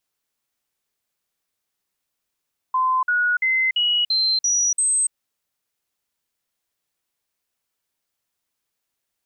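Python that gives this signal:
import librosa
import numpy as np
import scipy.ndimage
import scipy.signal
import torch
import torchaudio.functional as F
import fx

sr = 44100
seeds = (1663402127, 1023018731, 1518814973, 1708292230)

y = fx.stepped_sweep(sr, from_hz=1030.0, direction='up', per_octave=2, tones=7, dwell_s=0.29, gap_s=0.05, level_db=-16.5)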